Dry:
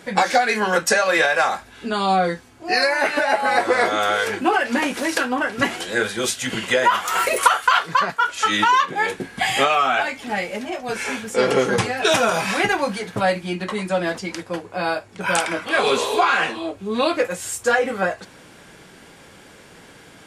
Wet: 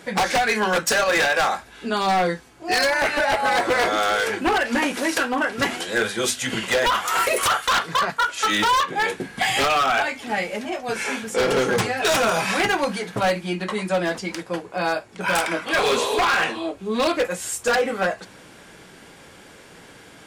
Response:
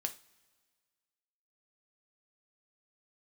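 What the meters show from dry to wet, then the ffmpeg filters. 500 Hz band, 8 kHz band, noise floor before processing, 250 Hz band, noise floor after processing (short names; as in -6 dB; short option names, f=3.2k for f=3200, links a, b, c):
-1.5 dB, 0.0 dB, -46 dBFS, -1.0 dB, -47 dBFS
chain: -af "aeval=exprs='0.211*(abs(mod(val(0)/0.211+3,4)-2)-1)':c=same,bandreject=f=50:t=h:w=6,bandreject=f=100:t=h:w=6,bandreject=f=150:t=h:w=6,bandreject=f=200:t=h:w=6,bandreject=f=250:t=h:w=6"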